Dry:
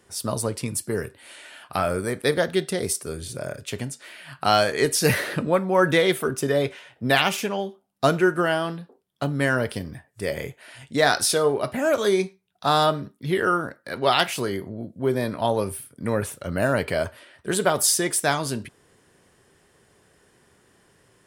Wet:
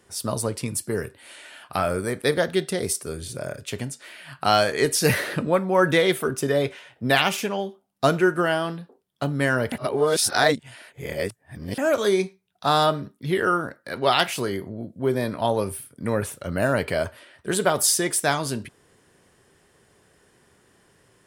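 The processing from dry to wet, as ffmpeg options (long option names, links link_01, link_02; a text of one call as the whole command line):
ffmpeg -i in.wav -filter_complex "[0:a]asplit=3[link_01][link_02][link_03];[link_01]atrim=end=9.722[link_04];[link_02]atrim=start=9.718:end=11.782,asetpts=PTS-STARTPTS,areverse[link_05];[link_03]atrim=start=11.778[link_06];[link_04][link_05]acrossfade=duration=0.004:curve1=hsin:curve2=hsin[link_07];[link_07][link_06]acrossfade=duration=0.004:curve1=hsin:curve2=hsin" out.wav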